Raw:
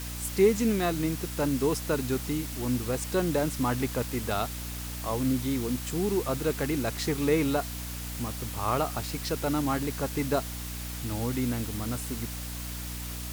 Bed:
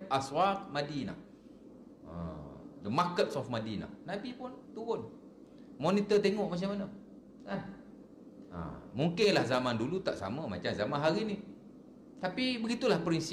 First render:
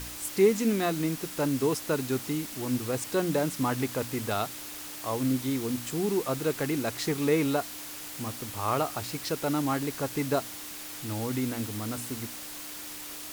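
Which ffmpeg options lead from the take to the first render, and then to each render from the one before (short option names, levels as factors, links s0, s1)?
-af "bandreject=f=60:t=h:w=4,bandreject=f=120:t=h:w=4,bandreject=f=180:t=h:w=4,bandreject=f=240:t=h:w=4"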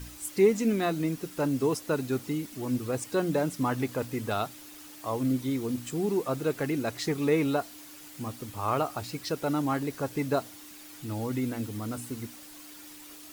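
-af "afftdn=nr=9:nf=-41"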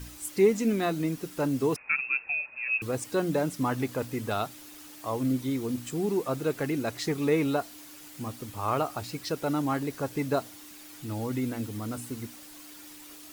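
-filter_complex "[0:a]asettb=1/sr,asplit=3[s0][s1][s2];[s0]atrim=end=1.764[s3];[s1]atrim=start=1.76:end=2.82,asetpts=PTS-STARTPTS,afade=t=in:d=0.004:c=qsin,afade=t=out:st=1.056:d=0.004:c=qsin,lowpass=f=2400:t=q:w=0.5098,lowpass=f=2400:t=q:w=0.6013,lowpass=f=2400:t=q:w=0.9,lowpass=f=2400:t=q:w=2.563,afreqshift=-2800[s4];[s2]atrim=start=2.816[s5];[s3][s4]acrossfade=d=0.004:c1=hsin:c2=qsin[s6];[s6][s5]acrossfade=d=0.004:c1=qsin:c2=hsin"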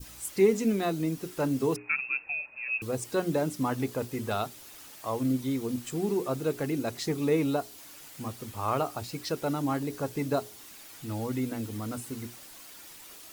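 -af "bandreject=f=60:t=h:w=6,bandreject=f=120:t=h:w=6,bandreject=f=180:t=h:w=6,bandreject=f=240:t=h:w=6,bandreject=f=300:t=h:w=6,bandreject=f=360:t=h:w=6,bandreject=f=420:t=h:w=6,adynamicequalizer=threshold=0.00631:dfrequency=1700:dqfactor=0.84:tfrequency=1700:tqfactor=0.84:attack=5:release=100:ratio=0.375:range=3:mode=cutabove:tftype=bell"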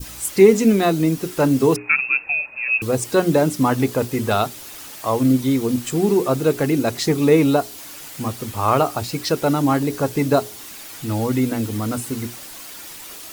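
-af "volume=3.76,alimiter=limit=0.891:level=0:latency=1"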